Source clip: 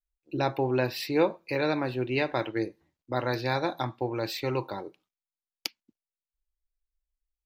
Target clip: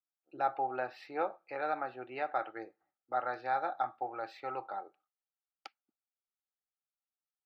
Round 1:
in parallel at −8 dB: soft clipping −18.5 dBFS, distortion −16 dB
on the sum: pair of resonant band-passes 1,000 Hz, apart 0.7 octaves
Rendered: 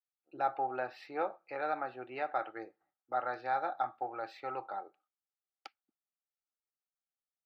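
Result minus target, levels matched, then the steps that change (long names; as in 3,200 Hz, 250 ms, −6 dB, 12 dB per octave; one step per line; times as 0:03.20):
soft clipping: distortion +16 dB
change: soft clipping −8 dBFS, distortion −32 dB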